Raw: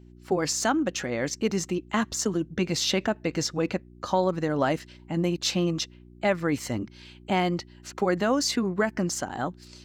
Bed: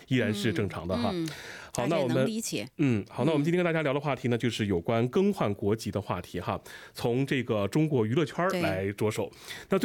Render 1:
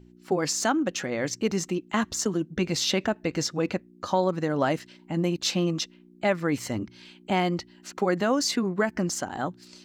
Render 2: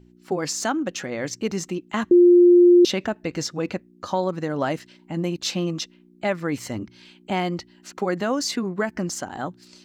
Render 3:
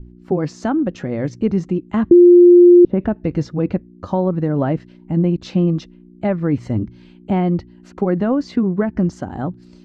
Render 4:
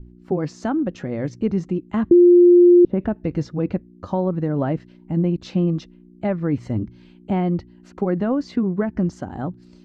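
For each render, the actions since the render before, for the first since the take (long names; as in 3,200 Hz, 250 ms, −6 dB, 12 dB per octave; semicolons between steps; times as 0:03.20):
hum removal 60 Hz, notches 2
0:02.11–0:02.85: beep over 352 Hz −9 dBFS
treble cut that deepens with the level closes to 450 Hz, closed at −12 dBFS; spectral tilt −4.5 dB per octave
level −3.5 dB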